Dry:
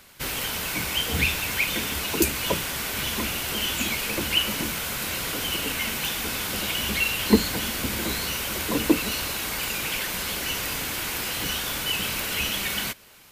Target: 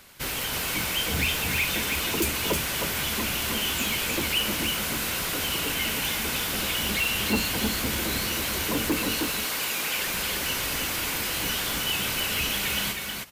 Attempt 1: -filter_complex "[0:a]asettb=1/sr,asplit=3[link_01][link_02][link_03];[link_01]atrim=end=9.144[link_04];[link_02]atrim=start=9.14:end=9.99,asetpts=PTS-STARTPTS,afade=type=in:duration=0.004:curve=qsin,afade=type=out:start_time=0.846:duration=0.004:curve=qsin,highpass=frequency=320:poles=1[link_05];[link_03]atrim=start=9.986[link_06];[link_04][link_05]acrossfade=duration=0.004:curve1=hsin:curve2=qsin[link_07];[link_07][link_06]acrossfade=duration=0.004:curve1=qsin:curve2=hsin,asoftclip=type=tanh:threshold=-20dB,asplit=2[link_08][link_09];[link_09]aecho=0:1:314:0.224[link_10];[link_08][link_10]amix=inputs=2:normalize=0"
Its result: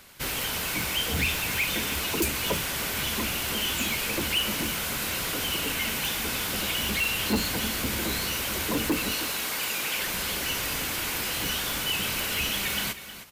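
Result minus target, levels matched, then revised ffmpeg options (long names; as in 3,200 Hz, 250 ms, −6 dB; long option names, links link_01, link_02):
echo-to-direct −9 dB
-filter_complex "[0:a]asettb=1/sr,asplit=3[link_01][link_02][link_03];[link_01]atrim=end=9.144[link_04];[link_02]atrim=start=9.14:end=9.99,asetpts=PTS-STARTPTS,afade=type=in:duration=0.004:curve=qsin,afade=type=out:start_time=0.846:duration=0.004:curve=qsin,highpass=frequency=320:poles=1[link_05];[link_03]atrim=start=9.986[link_06];[link_04][link_05]acrossfade=duration=0.004:curve1=hsin:curve2=qsin[link_07];[link_07][link_06]acrossfade=duration=0.004:curve1=qsin:curve2=hsin,asoftclip=type=tanh:threshold=-20dB,asplit=2[link_08][link_09];[link_09]aecho=0:1:314:0.631[link_10];[link_08][link_10]amix=inputs=2:normalize=0"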